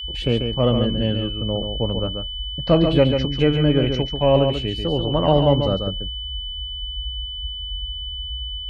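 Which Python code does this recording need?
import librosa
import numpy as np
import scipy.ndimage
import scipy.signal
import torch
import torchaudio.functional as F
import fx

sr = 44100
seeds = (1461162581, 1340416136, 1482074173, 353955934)

y = fx.notch(x, sr, hz=3000.0, q=30.0)
y = fx.noise_reduce(y, sr, print_start_s=7.21, print_end_s=7.71, reduce_db=30.0)
y = fx.fix_echo_inverse(y, sr, delay_ms=139, level_db=-6.0)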